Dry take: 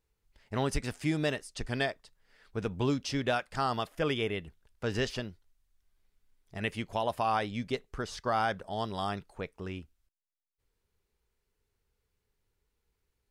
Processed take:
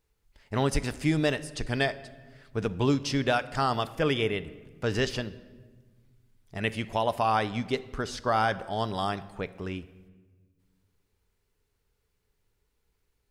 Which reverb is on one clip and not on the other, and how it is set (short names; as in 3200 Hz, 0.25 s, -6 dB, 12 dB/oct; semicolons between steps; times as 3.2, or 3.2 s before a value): shoebox room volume 1400 m³, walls mixed, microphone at 0.34 m; gain +4 dB